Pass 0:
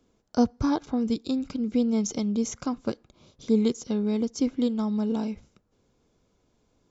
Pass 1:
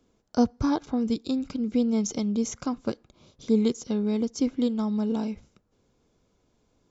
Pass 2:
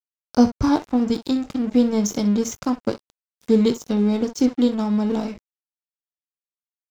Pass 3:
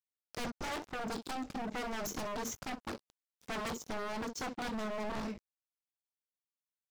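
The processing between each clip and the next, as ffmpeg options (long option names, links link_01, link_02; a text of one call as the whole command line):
ffmpeg -i in.wav -af anull out.wav
ffmpeg -i in.wav -filter_complex "[0:a]asplit=2[link_01][link_02];[link_02]aecho=0:1:20|63:0.355|0.211[link_03];[link_01][link_03]amix=inputs=2:normalize=0,aeval=exprs='sgn(val(0))*max(abs(val(0))-0.00841,0)':channel_layout=same,volume=6.5dB" out.wav
ffmpeg -i in.wav -af "aeval=exprs='(tanh(3.55*val(0)+0.25)-tanh(0.25))/3.55':channel_layout=same,aeval=exprs='0.0562*(abs(mod(val(0)/0.0562+3,4)-2)-1)':channel_layout=same,volume=-7.5dB" out.wav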